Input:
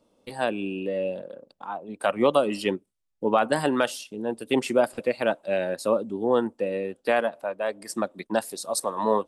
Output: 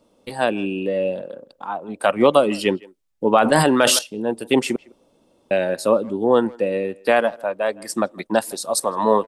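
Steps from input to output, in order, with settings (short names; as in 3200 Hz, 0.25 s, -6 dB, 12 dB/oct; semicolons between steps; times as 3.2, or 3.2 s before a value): 4.76–5.51 room tone; speakerphone echo 0.16 s, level -23 dB; 3.42–3.99 sustainer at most 23 dB/s; gain +6 dB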